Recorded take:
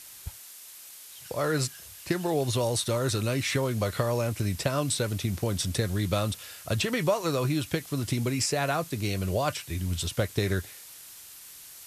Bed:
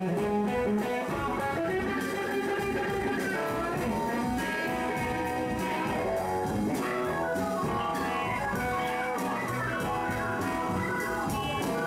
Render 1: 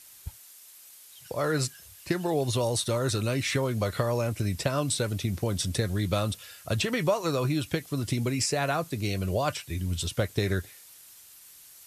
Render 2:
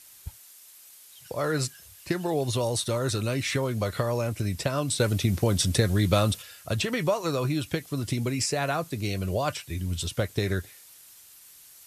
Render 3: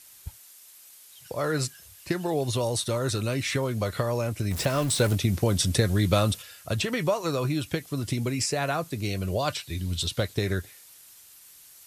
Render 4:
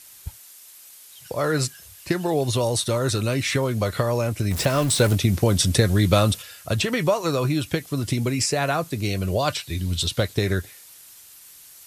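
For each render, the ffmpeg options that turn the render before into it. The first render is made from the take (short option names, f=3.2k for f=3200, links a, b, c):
-af "afftdn=nr=6:nf=-47"
-filter_complex "[0:a]asplit=3[a][b][c];[a]atrim=end=5.002[d];[b]atrim=start=4.998:end=6.422,asetpts=PTS-STARTPTS,volume=5dB[e];[c]atrim=start=6.418[f];[d][e]acrossfade=d=0.004:c1=hsin:c2=hsin[g];[g][f]acrossfade=d=0.004:c1=hsin:c2=hsin"
-filter_complex "[0:a]asettb=1/sr,asplit=3[a][b][c];[a]atrim=end=4.514[d];[b]atrim=start=4.51:end=5.15,asetpts=PTS-STARTPTS,afade=t=in:d=0.004:c=qsin,afade=t=out:st=0.636:d=0.004:c=qsin,aeval=exprs='val(0)+0.5*0.0316*sgn(val(0))':c=same[e];[c]atrim=start=5.146[f];[d][e]acrossfade=d=0.004:c1=hsin:c2=qsin[g];[g][f]acrossfade=d=0.004:c1=qsin:c2=hsin,asettb=1/sr,asplit=3[h][i][j];[h]atrim=end=9.394[k];[i]atrim=start=9.39:end=10.34,asetpts=PTS-STARTPTS,afade=t=in:d=0.004:c=qsin,afade=t=out:st=0.946:d=0.004:c=qsin,equalizer=f=4k:w=2.6:g=8[l];[j]atrim=start=10.336[m];[k][l]acrossfade=d=0.004:c1=hsin:c2=qsin[n];[n][m]acrossfade=d=0.004:c1=qsin:c2=hsin"
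-af "volume=4.5dB"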